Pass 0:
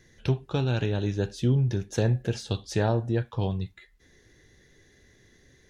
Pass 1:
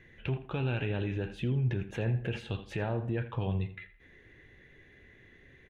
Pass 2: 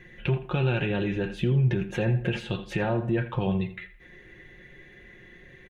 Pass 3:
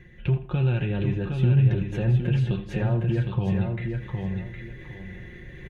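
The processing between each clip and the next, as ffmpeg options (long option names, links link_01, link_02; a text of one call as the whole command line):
ffmpeg -i in.wav -filter_complex "[0:a]highshelf=frequency=3700:width_type=q:width=3:gain=-13,alimiter=limit=-24dB:level=0:latency=1:release=39,asplit=2[link_01][link_02];[link_02]adelay=82,lowpass=frequency=3700:poles=1,volume=-13dB,asplit=2[link_03][link_04];[link_04]adelay=82,lowpass=frequency=3700:poles=1,volume=0.33,asplit=2[link_05][link_06];[link_06]adelay=82,lowpass=frequency=3700:poles=1,volume=0.33[link_07];[link_01][link_03][link_05][link_07]amix=inputs=4:normalize=0" out.wav
ffmpeg -i in.wav -af "aecho=1:1:5.6:0.61,volume=6dB" out.wav
ffmpeg -i in.wav -af "equalizer=frequency=65:width=0.4:gain=13.5,areverse,acompressor=mode=upward:threshold=-27dB:ratio=2.5,areverse,aecho=1:1:762|1524|2286:0.562|0.146|0.038,volume=-6dB" out.wav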